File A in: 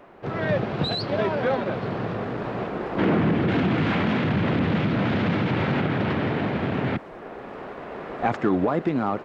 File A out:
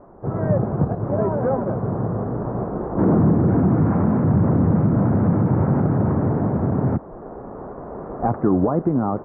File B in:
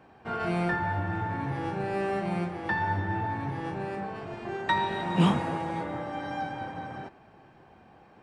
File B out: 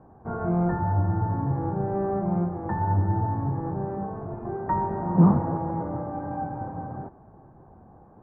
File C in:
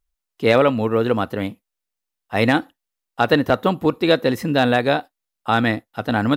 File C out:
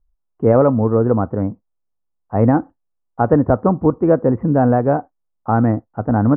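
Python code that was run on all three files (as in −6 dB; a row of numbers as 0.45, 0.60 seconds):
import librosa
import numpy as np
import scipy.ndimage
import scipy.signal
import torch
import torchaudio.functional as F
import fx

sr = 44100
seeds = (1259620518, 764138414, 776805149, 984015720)

y = scipy.signal.sosfilt(scipy.signal.cheby2(4, 60, 3900.0, 'lowpass', fs=sr, output='sos'), x)
y = fx.low_shelf(y, sr, hz=150.0, db=11.0)
y = y * 10.0 ** (1.5 / 20.0)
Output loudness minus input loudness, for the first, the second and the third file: +4.5, +4.0, +2.5 LU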